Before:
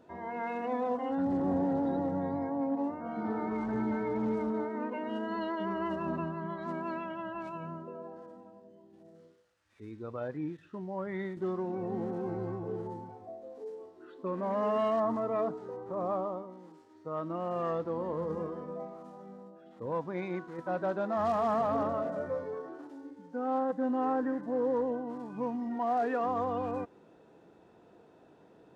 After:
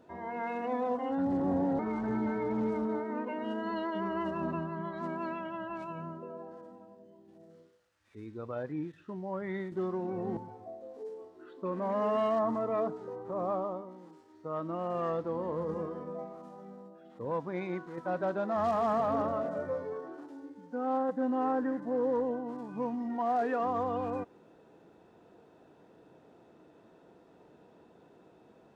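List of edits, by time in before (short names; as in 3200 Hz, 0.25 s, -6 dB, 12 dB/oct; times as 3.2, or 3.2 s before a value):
1.79–3.44 cut
12.02–12.98 cut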